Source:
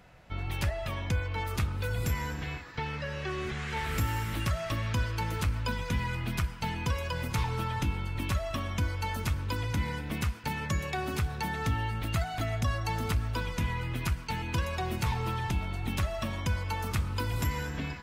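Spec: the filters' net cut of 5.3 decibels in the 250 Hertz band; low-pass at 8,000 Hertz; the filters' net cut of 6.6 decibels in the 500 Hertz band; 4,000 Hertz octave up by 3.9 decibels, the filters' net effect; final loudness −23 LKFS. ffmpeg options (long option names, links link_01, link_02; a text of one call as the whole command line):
ffmpeg -i in.wav -af "lowpass=8000,equalizer=frequency=250:width_type=o:gain=-6.5,equalizer=frequency=500:width_type=o:gain=-7,equalizer=frequency=4000:width_type=o:gain=5.5,volume=10dB" out.wav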